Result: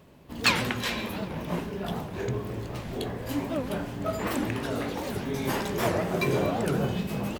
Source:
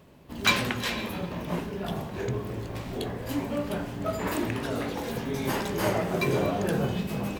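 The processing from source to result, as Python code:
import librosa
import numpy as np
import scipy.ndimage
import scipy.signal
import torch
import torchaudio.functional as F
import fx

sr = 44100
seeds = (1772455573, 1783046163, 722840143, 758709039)

y = fx.record_warp(x, sr, rpm=78.0, depth_cents=250.0)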